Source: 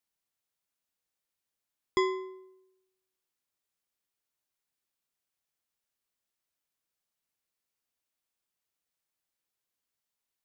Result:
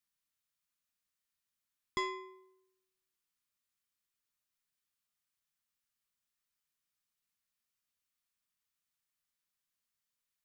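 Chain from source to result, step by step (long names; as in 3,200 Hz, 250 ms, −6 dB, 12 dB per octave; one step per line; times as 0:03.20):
flat-topped bell 510 Hz −9 dB
in parallel at −3 dB: soft clipping −32 dBFS, distortion −8 dB
on the sum: tuned comb filter 610 Hz, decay 0.54 s, mix 70%
level +4 dB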